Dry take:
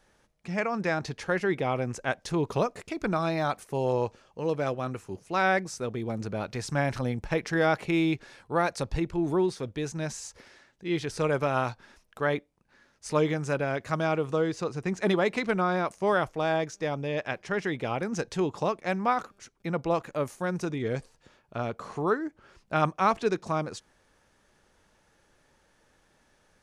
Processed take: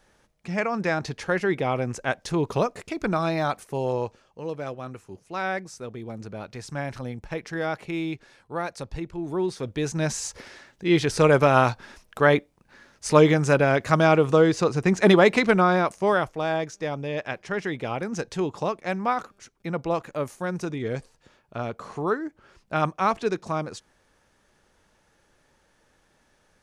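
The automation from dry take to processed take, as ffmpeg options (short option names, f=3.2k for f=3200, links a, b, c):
-af "volume=16dB,afade=t=out:st=3.39:d=1.13:silence=0.446684,afade=t=in:st=9.28:d=0.99:silence=0.223872,afade=t=out:st=15.3:d=1.02:silence=0.398107"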